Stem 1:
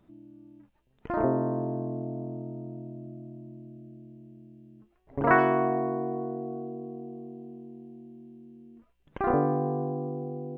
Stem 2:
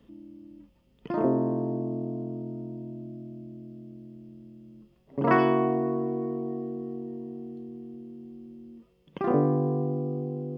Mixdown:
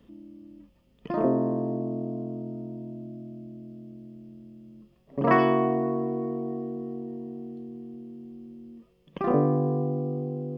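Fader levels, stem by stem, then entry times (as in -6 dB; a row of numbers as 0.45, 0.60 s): -11.0, +1.0 dB; 0.00, 0.00 s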